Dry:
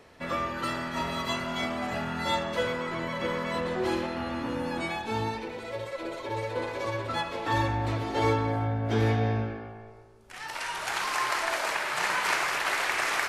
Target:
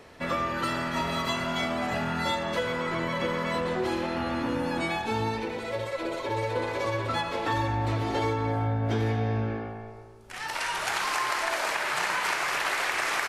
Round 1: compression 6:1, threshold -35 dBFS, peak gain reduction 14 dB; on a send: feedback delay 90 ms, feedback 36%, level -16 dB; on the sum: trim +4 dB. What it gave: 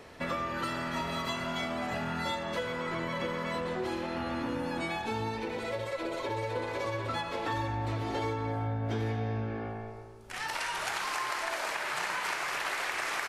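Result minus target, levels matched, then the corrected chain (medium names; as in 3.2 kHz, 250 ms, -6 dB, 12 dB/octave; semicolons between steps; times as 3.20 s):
compression: peak gain reduction +5.5 dB
compression 6:1, threshold -28.5 dBFS, peak gain reduction 8.5 dB; on a send: feedback delay 90 ms, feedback 36%, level -16 dB; on the sum: trim +4 dB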